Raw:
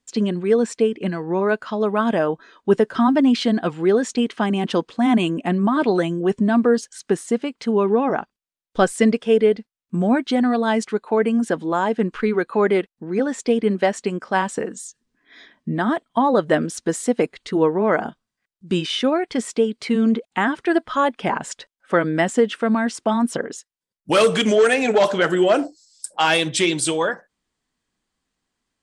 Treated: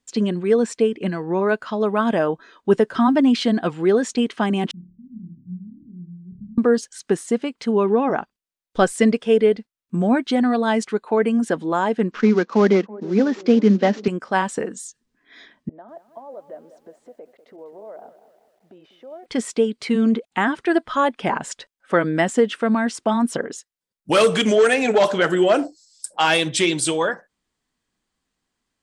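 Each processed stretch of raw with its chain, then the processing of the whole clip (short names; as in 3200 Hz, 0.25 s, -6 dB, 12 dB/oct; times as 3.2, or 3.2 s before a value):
4.71–6.58 inverse Chebyshev band-stop 720–8600 Hz, stop band 80 dB + fixed phaser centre 1400 Hz, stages 4 + flutter echo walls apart 4.8 m, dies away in 0.48 s
12.11–14.08 CVSD 32 kbps + resonant low shelf 140 Hz -12 dB, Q 3 + band-limited delay 0.33 s, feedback 59%, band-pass 490 Hz, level -19.5 dB
15.69–19.26 compressor 8:1, threshold -29 dBFS + band-pass 610 Hz, Q 3.4 + lo-fi delay 0.196 s, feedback 55%, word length 10-bit, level -13 dB
whole clip: dry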